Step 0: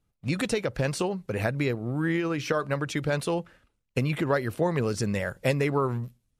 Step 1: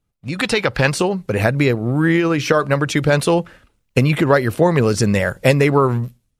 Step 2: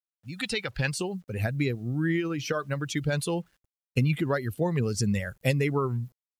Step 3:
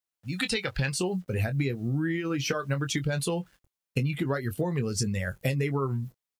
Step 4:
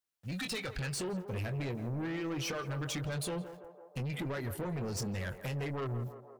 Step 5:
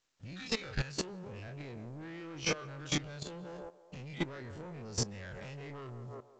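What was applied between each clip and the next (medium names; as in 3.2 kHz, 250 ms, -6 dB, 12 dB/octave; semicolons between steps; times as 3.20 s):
time-frequency box 0.39–0.90 s, 750–5300 Hz +7 dB; level rider gain up to 12.5 dB; trim +1 dB
expander on every frequency bin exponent 1.5; peaking EQ 780 Hz -7.5 dB 2.5 oct; bit crusher 10-bit; trim -6 dB
compression, threshold -30 dBFS, peak gain reduction 11 dB; doubling 22 ms -10 dB; trim +5 dB
in parallel at +1 dB: peak limiter -24 dBFS, peak gain reduction 10 dB; on the sum: saturation -26.5 dBFS, distortion -9 dB; band-passed feedback delay 167 ms, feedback 76%, band-pass 670 Hz, level -9 dB; trim -7 dB
every event in the spectrogram widened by 60 ms; level held to a coarse grid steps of 16 dB; trim +3 dB; µ-law 128 kbps 16 kHz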